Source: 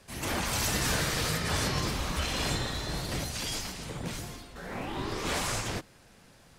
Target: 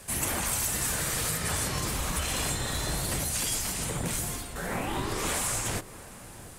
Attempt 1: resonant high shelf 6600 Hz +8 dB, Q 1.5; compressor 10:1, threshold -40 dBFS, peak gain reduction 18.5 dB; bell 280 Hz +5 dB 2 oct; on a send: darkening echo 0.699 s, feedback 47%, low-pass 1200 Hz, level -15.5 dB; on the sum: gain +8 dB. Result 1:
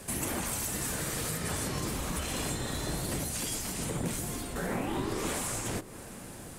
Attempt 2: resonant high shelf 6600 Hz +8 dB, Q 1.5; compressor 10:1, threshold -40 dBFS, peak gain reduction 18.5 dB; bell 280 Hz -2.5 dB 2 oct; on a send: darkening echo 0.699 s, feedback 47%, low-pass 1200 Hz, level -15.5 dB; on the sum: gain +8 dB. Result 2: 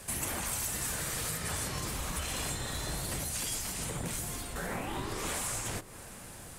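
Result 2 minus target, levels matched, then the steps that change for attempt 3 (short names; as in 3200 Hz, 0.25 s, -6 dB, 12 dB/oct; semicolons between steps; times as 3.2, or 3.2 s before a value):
compressor: peak gain reduction +5.5 dB
change: compressor 10:1, threshold -34 dBFS, peak gain reduction 13 dB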